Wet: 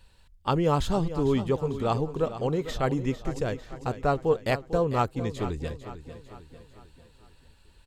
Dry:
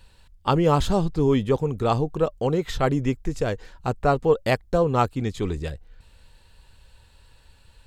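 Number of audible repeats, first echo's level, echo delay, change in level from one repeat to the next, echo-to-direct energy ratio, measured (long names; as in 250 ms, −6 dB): 4, −12.5 dB, 449 ms, −6.0 dB, −11.5 dB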